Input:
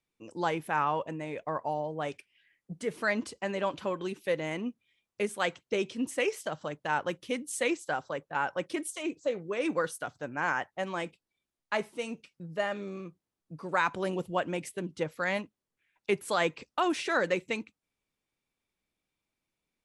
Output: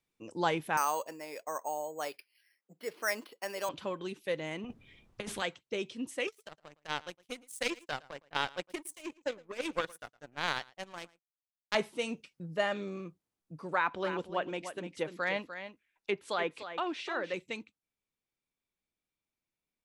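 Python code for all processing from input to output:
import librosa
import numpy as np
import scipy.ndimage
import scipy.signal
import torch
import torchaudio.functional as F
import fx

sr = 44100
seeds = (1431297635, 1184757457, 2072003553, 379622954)

y = fx.chain(x, sr, fx.highpass(hz=420.0, slope=12),
    fx.resample_bad(factor=6, down='filtered', up='hold'), at=(0.77, 3.69))
y = fx.chain(y, sr, fx.tilt_eq(slope=-4.0),
    fx.over_compress(threshold_db=-31.0, ratio=-1.0),
    fx.spectral_comp(ratio=2.0), at=(4.64, 5.42))
y = fx.chain(y, sr, fx.power_curve(exponent=2.0),
    fx.high_shelf(hz=6700.0, db=10.0),
    fx.echo_single(ms=112, db=-22.5), at=(6.27, 11.75))
y = fx.chain(y, sr, fx.peak_eq(hz=130.0, db=-8.5, octaves=1.1),
    fx.env_lowpass_down(base_hz=2400.0, full_db=-23.5),
    fx.echo_single(ms=298, db=-10.0), at=(13.73, 17.34))
y = fx.dynamic_eq(y, sr, hz=3600.0, q=1.7, threshold_db=-53.0, ratio=4.0, max_db=5)
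y = fx.rider(y, sr, range_db=10, speed_s=2.0)
y = y * librosa.db_to_amplitude(-4.0)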